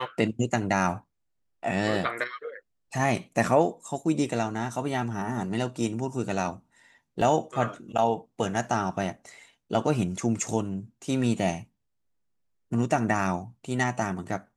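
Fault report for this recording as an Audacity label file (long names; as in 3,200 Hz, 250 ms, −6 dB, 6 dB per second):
7.210000	7.210000	drop-out 3.8 ms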